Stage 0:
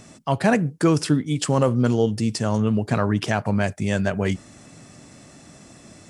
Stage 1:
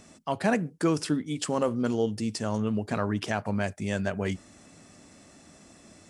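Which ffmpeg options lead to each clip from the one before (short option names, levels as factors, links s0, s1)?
-af "equalizer=f=130:w=5.1:g=-14.5,volume=0.501"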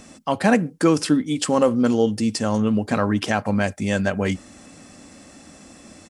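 -af "aecho=1:1:3.8:0.3,volume=2.37"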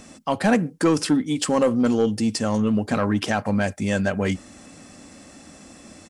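-af "asoftclip=type=tanh:threshold=0.316"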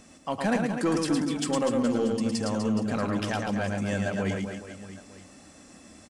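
-af "aecho=1:1:110|247.5|419.4|634.2|902.8:0.631|0.398|0.251|0.158|0.1,volume=0.422"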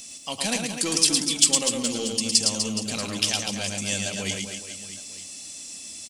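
-af "aexciter=amount=11.6:drive=2.7:freq=2400,volume=0.596"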